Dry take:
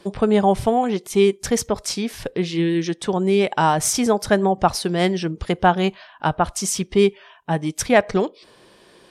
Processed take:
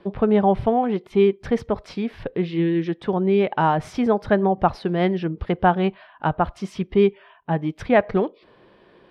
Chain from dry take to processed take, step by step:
high-frequency loss of the air 400 metres

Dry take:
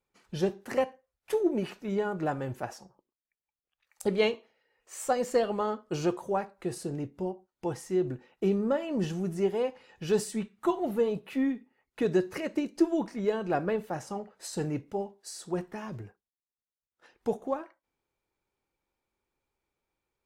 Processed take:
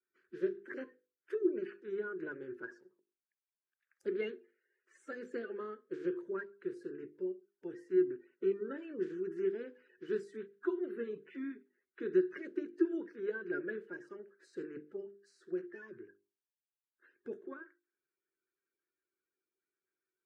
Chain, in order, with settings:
spectral magnitudes quantised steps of 30 dB
pair of resonant band-passes 770 Hz, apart 2.1 octaves
mains-hum notches 50/100/150/200/250/300/350/400/450/500 Hz
level +1 dB

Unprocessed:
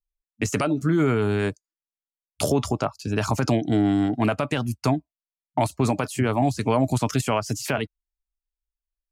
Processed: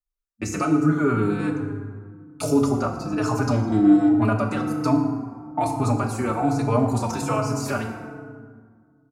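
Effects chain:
thirty-one-band graphic EQ 1,250 Hz +8 dB, 2,000 Hz −5 dB, 3,150 Hz −12 dB, 12,500 Hz −4 dB
feedback delay network reverb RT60 1.8 s, low-frequency decay 1.4×, high-frequency decay 0.5×, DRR 2 dB
barber-pole flanger 4.3 ms −1.2 Hz

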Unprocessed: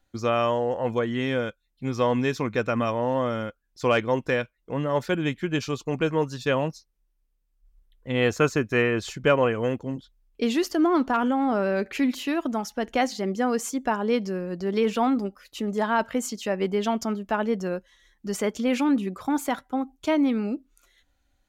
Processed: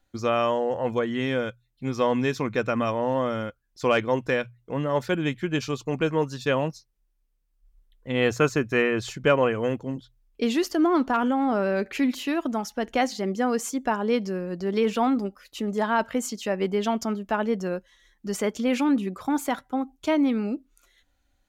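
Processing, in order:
mains-hum notches 60/120 Hz

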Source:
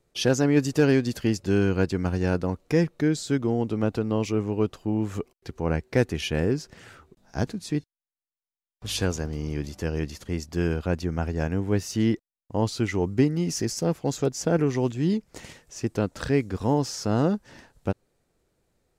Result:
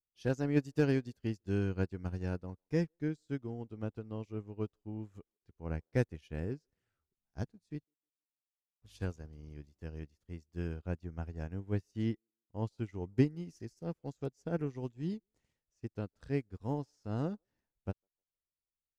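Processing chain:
low-shelf EQ 110 Hz +11.5 dB
delay with a band-pass on its return 154 ms, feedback 36%, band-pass 630 Hz, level −24 dB
expander for the loud parts 2.5 to 1, over −35 dBFS
level −7.5 dB

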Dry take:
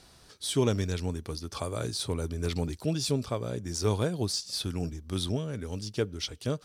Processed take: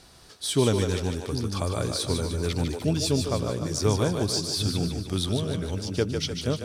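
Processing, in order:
echo with a time of its own for lows and highs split 300 Hz, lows 756 ms, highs 150 ms, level −5.5 dB
level +3.5 dB

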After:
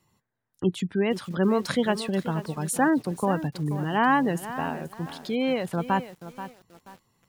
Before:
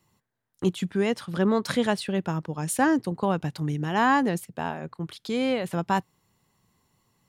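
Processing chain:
gate on every frequency bin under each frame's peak −30 dB strong
feedback echo at a low word length 482 ms, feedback 35%, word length 7 bits, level −12.5 dB

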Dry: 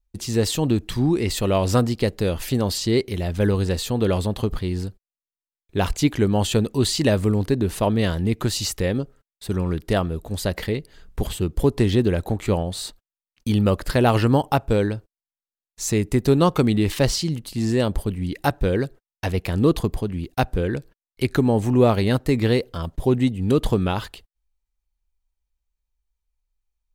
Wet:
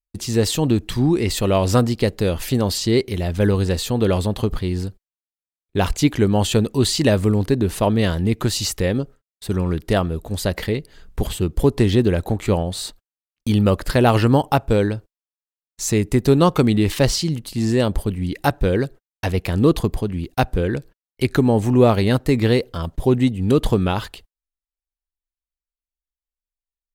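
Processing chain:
noise gate with hold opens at −38 dBFS
level +2.5 dB

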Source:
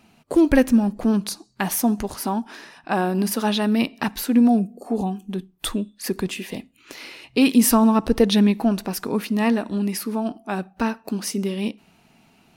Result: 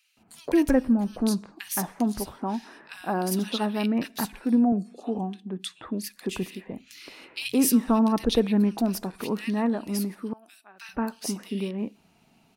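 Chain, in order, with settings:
0:04.55–0:05.91: band-pass filter 120–7,100 Hz
0:10.16–0:10.72: first difference
multiband delay without the direct sound highs, lows 170 ms, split 1,900 Hz
level −5 dB

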